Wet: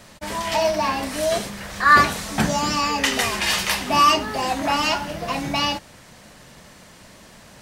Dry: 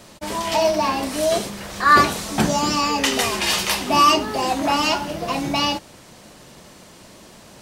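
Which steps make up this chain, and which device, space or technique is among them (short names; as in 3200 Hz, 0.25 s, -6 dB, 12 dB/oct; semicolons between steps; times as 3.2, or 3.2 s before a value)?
low shelf boost with a cut just above (low shelf 110 Hz +4.5 dB; bell 350 Hz -5 dB 0.54 oct); bell 1800 Hz +5 dB 0.72 oct; gain -2 dB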